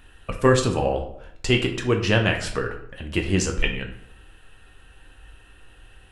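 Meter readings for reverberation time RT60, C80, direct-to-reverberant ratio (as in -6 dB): 0.70 s, 12.0 dB, 2.0 dB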